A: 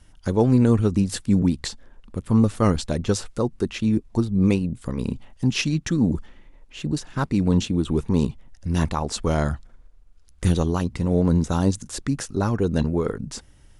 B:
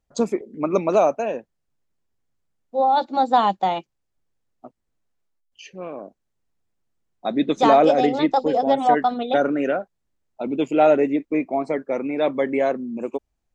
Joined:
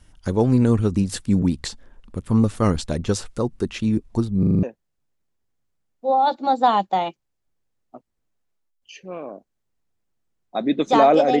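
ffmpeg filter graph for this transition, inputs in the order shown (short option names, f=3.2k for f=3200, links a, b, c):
-filter_complex "[0:a]apad=whole_dur=11.4,atrim=end=11.4,asplit=6[a][b][c][d][e][f];[a]atrim=end=4.432[g];[b]atrim=start=4.388:end=4.432[h];[c]atrim=start=4.388:end=4.432[i];[d]atrim=start=4.388:end=4.432[j];[e]atrim=start=4.388:end=4.432[k];[f]atrim=start=4.388:end=4.432[l];[1:a]atrim=start=1.328:end=8.1[m];[g][h]acrossfade=d=0.004:c1=hsin:c2=hsin[n];[n][i]acrossfade=d=0.004:c1=hsin:c2=hsin[o];[o][j]acrossfade=d=0.004:c1=hsin:c2=hsin[p];[p][k]acrossfade=d=0.004:c1=hsin:c2=hsin[q];[q][l]acrossfade=d=0.004:c1=hsin:c2=hsin[r];[r][m]acrossfade=d=0.004:c1=hsin:c2=hsin"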